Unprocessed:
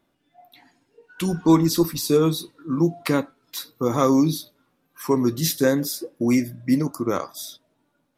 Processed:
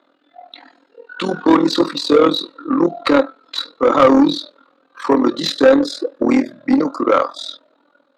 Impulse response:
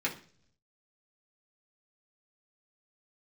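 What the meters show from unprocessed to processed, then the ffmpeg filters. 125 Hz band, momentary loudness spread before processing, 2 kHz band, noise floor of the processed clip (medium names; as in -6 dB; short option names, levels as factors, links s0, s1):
-8.0 dB, 15 LU, +9.0 dB, -60 dBFS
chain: -filter_complex "[0:a]tremolo=f=41:d=0.824,highpass=f=170:w=0.5412,highpass=f=170:w=1.3066,equalizer=f=280:t=q:w=4:g=9,equalizer=f=530:t=q:w=4:g=10,equalizer=f=1300:t=q:w=4:g=8,equalizer=f=2300:t=q:w=4:g=-3,equalizer=f=4000:t=q:w=4:g=10,equalizer=f=5700:t=q:w=4:g=-8,lowpass=f=7400:w=0.5412,lowpass=f=7400:w=1.3066,asplit=2[s0][s1];[s1]highpass=f=720:p=1,volume=11.2,asoftclip=type=tanh:threshold=0.944[s2];[s0][s2]amix=inputs=2:normalize=0,lowpass=f=1500:p=1,volume=0.501,lowshelf=f=390:g=-6,volume=1.33"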